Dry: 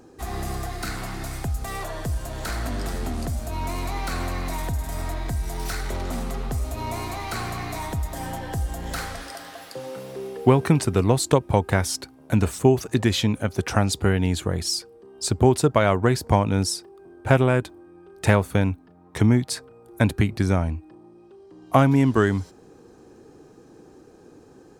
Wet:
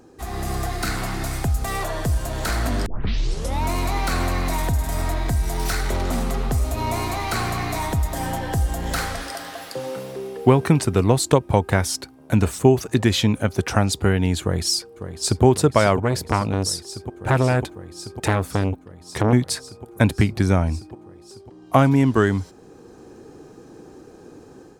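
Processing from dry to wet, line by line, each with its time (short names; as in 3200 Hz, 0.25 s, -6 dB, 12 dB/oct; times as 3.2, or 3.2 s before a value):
2.86 tape start 0.77 s
14.41–15.44 echo throw 0.55 s, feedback 85%, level -12 dB
16.02–19.33 core saturation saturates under 1000 Hz
whole clip: AGC gain up to 5.5 dB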